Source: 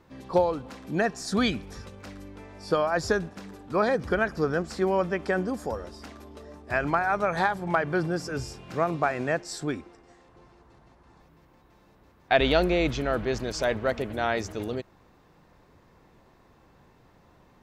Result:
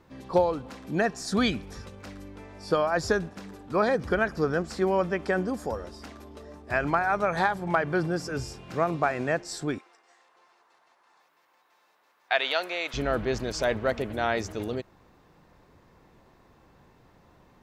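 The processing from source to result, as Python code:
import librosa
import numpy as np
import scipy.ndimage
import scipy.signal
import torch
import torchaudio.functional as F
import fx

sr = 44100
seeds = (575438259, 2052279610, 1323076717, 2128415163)

y = fx.highpass(x, sr, hz=870.0, slope=12, at=(9.78, 12.94))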